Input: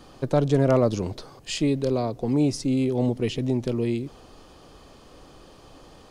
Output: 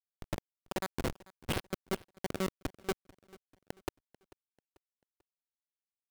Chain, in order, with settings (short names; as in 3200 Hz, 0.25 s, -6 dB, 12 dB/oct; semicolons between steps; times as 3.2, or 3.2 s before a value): dynamic EQ 2500 Hz, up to +6 dB, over -45 dBFS, Q 0.73; in parallel at -2 dB: upward compressor, threshold -27 dBFS; on the sum: resonator 240 Hz, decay 1.1 s, mix 90%; darkening echo 0.343 s, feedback 70%, low-pass 1000 Hz, level -12 dB; monotone LPC vocoder at 8 kHz 190 Hz; rotary speaker horn 0.7 Hz; Schmitt trigger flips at -39 dBFS; low shelf 74 Hz -10.5 dB; bit-crush 10-bit; on a send: feedback echo 0.441 s, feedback 40%, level -22 dB; on the sum: gain +9 dB